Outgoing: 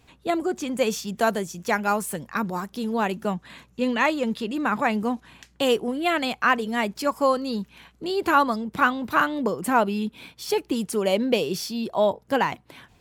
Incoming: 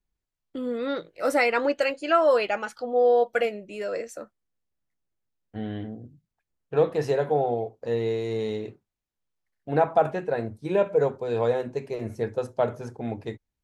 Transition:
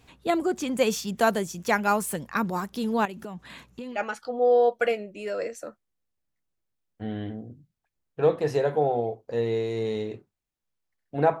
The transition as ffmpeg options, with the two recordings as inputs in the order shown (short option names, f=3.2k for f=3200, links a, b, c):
-filter_complex "[0:a]asettb=1/sr,asplit=3[a][b][c];[a]atrim=end=3.054[d];[b]atrim=start=3.05:end=4.01,asetpts=PTS-STARTPTS,afade=t=in:d=0.004:c=qsin,afade=t=out:st=0.956:d=0.004:c=qsin,acompressor=threshold=-33dB:ratio=12:attack=3.2:release=140:knee=1:detection=peak[e];[c]atrim=start=4.006[f];[d][e]acrossfade=d=0.004:c1=hsin:c2=qsin[g];[g][f]acrossfade=d=0.004:c1=qsin:c2=hsin,apad=whole_dur=11.4,atrim=end=11.4,atrim=end=4.01,asetpts=PTS-STARTPTS[h];[1:a]atrim=start=2.45:end=9.94,asetpts=PTS-STARTPTS[i];[h][i]acrossfade=d=0.1:c1=tri:c2=tri"